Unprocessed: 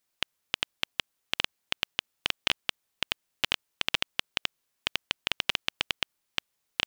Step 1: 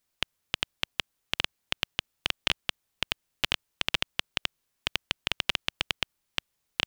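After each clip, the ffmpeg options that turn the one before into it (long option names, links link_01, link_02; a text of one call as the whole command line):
ffmpeg -i in.wav -af "lowshelf=frequency=150:gain=8.5" out.wav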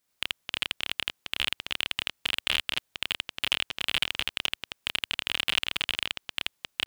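ffmpeg -i in.wav -af "lowshelf=frequency=74:gain=-9,aecho=1:1:29.15|81.63|265.3:0.631|1|0.355,aeval=exprs='clip(val(0),-1,0.251)':channel_layout=same" out.wav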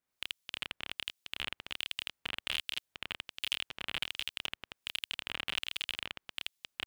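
ffmpeg -i in.wav -filter_complex "[0:a]acrossover=split=2400[link_01][link_02];[link_01]aeval=exprs='val(0)*(1-0.7/2+0.7/2*cos(2*PI*1.3*n/s))':channel_layout=same[link_03];[link_02]aeval=exprs='val(0)*(1-0.7/2-0.7/2*cos(2*PI*1.3*n/s))':channel_layout=same[link_04];[link_03][link_04]amix=inputs=2:normalize=0,volume=-5dB" out.wav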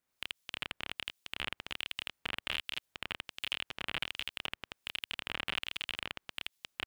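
ffmpeg -i in.wav -filter_complex "[0:a]acrossover=split=2800[link_01][link_02];[link_02]acompressor=threshold=-42dB:ratio=4:attack=1:release=60[link_03];[link_01][link_03]amix=inputs=2:normalize=0,volume=3dB" out.wav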